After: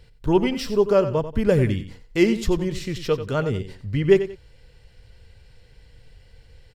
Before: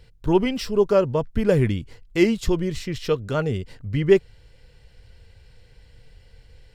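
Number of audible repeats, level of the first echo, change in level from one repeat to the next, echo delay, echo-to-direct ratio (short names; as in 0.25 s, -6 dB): 2, -12.0 dB, -11.5 dB, 91 ms, -11.5 dB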